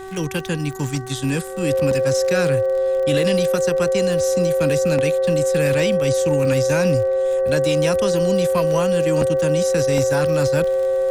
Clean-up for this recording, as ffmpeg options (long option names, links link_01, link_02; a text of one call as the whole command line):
ffmpeg -i in.wav -af "adeclick=threshold=4,bandreject=frequency=381.2:width_type=h:width=4,bandreject=frequency=762.4:width_type=h:width=4,bandreject=frequency=1143.6:width_type=h:width=4,bandreject=frequency=1524.8:width_type=h:width=4,bandreject=frequency=1906:width_type=h:width=4,bandreject=frequency=530:width=30,agate=range=-21dB:threshold=-14dB" out.wav